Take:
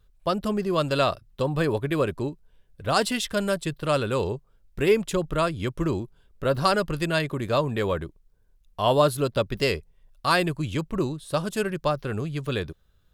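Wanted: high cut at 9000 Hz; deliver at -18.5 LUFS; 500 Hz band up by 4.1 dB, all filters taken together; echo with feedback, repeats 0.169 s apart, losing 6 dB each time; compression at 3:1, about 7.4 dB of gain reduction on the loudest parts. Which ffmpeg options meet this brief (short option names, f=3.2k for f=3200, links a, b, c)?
-af "lowpass=9k,equalizer=f=500:t=o:g=5,acompressor=threshold=-21dB:ratio=3,aecho=1:1:169|338|507|676|845|1014:0.501|0.251|0.125|0.0626|0.0313|0.0157,volume=7.5dB"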